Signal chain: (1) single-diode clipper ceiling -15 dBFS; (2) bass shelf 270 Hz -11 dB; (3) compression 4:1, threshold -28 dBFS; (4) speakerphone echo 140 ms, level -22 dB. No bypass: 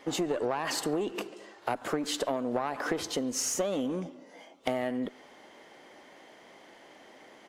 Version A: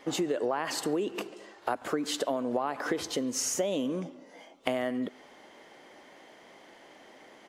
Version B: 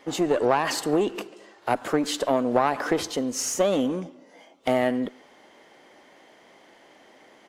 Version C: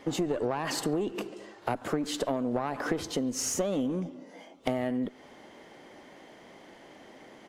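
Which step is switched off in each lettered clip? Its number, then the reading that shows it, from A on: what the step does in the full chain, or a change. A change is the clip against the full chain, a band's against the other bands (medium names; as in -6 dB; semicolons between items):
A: 1, crest factor change +3.0 dB; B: 3, momentary loudness spread change +2 LU; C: 2, 125 Hz band +6.0 dB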